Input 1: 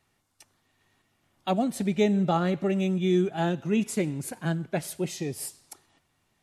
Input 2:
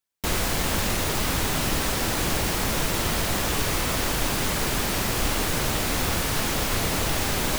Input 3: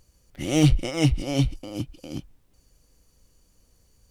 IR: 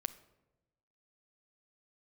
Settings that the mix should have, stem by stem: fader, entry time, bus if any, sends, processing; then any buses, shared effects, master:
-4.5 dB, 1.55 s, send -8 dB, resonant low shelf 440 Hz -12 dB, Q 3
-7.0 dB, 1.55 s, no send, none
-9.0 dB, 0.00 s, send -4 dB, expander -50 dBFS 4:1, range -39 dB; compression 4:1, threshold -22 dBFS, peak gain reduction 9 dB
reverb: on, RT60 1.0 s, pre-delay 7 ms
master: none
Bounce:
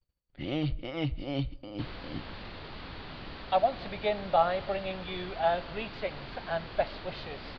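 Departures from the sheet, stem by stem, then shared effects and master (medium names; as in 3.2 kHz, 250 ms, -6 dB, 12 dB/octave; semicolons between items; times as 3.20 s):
stem 1: entry 1.55 s -> 2.05 s; stem 2 -7.0 dB -> -16.5 dB; master: extra Chebyshev low-pass 4.6 kHz, order 6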